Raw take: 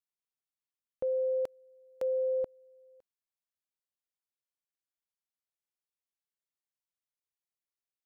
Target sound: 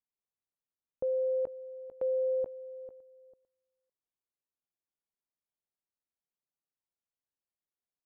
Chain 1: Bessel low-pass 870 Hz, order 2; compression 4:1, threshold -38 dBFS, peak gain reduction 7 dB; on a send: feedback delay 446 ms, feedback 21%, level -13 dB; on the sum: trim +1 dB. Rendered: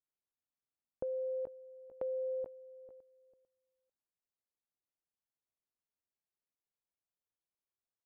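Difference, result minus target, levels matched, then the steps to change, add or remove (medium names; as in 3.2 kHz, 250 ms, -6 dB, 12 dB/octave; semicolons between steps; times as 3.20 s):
compression: peak gain reduction +7 dB
remove: compression 4:1, threshold -38 dBFS, peak gain reduction 7 dB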